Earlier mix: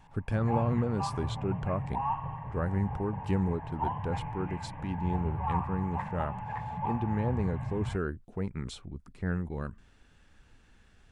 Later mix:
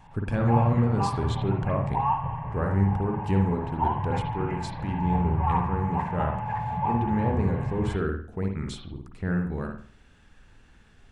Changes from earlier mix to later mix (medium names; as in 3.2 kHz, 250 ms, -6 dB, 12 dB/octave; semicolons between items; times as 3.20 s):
first sound +5.0 dB; reverb: on